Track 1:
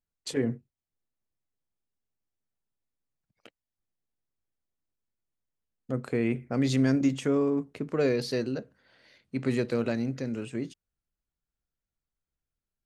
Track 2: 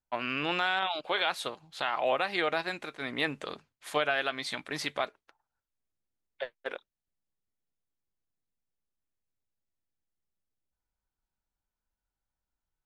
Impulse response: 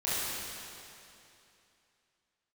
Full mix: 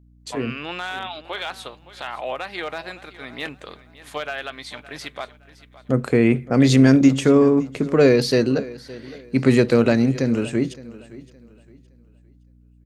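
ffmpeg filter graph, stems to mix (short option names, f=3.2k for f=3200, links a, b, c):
-filter_complex "[0:a]dynaudnorm=f=140:g=21:m=13dB,volume=0.5dB,asplit=2[a][b];[b]volume=-19dB[c];[1:a]volume=17.5dB,asoftclip=hard,volume=-17.5dB,adelay=200,volume=-0.5dB,asplit=2[d][e];[e]volume=-17dB[f];[c][f]amix=inputs=2:normalize=0,aecho=0:1:566|1132|1698|2264:1|0.29|0.0841|0.0244[g];[a][d][g]amix=inputs=3:normalize=0,aeval=exprs='val(0)+0.00282*(sin(2*PI*60*n/s)+sin(2*PI*2*60*n/s)/2+sin(2*PI*3*60*n/s)/3+sin(2*PI*4*60*n/s)/4+sin(2*PI*5*60*n/s)/5)':c=same"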